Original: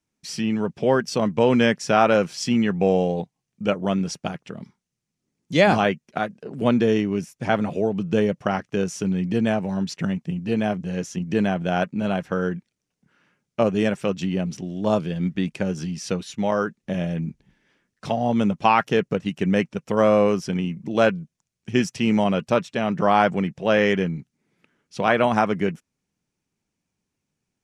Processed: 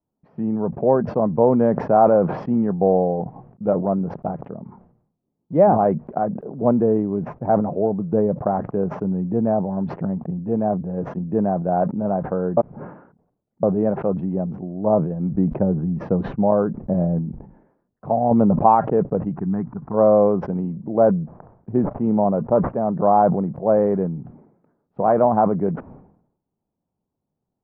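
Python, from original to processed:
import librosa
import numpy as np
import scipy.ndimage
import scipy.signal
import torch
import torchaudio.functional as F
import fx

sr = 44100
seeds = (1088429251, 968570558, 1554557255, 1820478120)

y = fx.low_shelf(x, sr, hz=320.0, db=7.0, at=(15.32, 17.19))
y = fx.env_flatten(y, sr, amount_pct=70, at=(18.31, 18.75))
y = fx.fixed_phaser(y, sr, hz=1300.0, stages=4, at=(19.32, 19.93), fade=0.02)
y = fx.resample_linear(y, sr, factor=8, at=(20.8, 23.96))
y = fx.edit(y, sr, fx.reverse_span(start_s=12.57, length_s=1.06), tone=tone)
y = scipy.signal.sosfilt(scipy.signal.butter(4, 1000.0, 'lowpass', fs=sr, output='sos'), y)
y = fx.peak_eq(y, sr, hz=700.0, db=5.0, octaves=0.99)
y = fx.sustainer(y, sr, db_per_s=82.0)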